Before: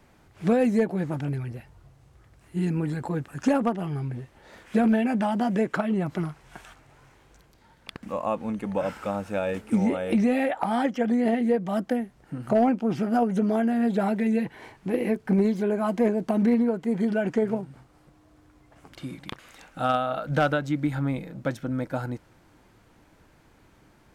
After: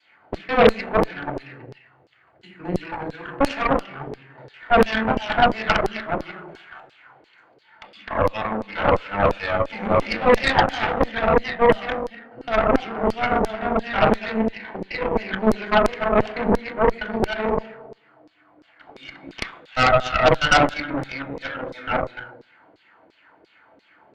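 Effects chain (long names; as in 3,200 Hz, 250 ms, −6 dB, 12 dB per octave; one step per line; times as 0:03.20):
reversed piece by piece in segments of 162 ms
convolution reverb RT60 0.85 s, pre-delay 3 ms, DRR −3 dB
auto-filter band-pass saw down 2.9 Hz 420–5,100 Hz
harmonic generator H 8 −13 dB, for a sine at −1.5 dBFS
level −1 dB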